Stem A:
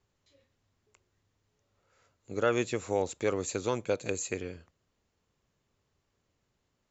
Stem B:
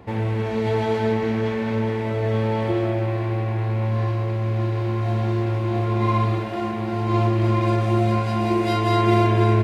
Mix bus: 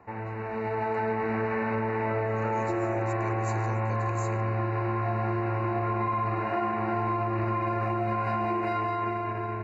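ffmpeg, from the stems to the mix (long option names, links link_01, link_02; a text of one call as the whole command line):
ffmpeg -i stem1.wav -i stem2.wav -filter_complex "[0:a]volume=-5dB[link_01];[1:a]acrossover=split=470 2200:gain=0.251 1 0.0708[link_02][link_03][link_04];[link_02][link_03][link_04]amix=inputs=3:normalize=0,alimiter=limit=-21.5dB:level=0:latency=1:release=37,dynaudnorm=framelen=170:gausssize=11:maxgain=12dB,volume=-2.5dB[link_05];[link_01][link_05]amix=inputs=2:normalize=0,asuperstop=centerf=3300:order=12:qfactor=4,equalizer=frequency=530:width=2:gain=-5.5,acompressor=threshold=-25dB:ratio=6" out.wav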